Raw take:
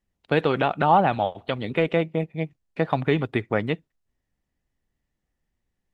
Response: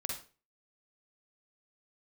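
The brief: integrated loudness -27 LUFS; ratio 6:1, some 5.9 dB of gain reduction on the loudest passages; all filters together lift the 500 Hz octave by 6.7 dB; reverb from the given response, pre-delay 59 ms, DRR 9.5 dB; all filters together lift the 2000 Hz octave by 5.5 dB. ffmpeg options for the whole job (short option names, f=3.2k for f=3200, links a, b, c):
-filter_complex "[0:a]equalizer=f=500:t=o:g=7.5,equalizer=f=2k:t=o:g=6.5,acompressor=threshold=-16dB:ratio=6,asplit=2[a][b];[1:a]atrim=start_sample=2205,adelay=59[c];[b][c]afir=irnorm=-1:irlink=0,volume=-10.5dB[d];[a][d]amix=inputs=2:normalize=0,volume=-3.5dB"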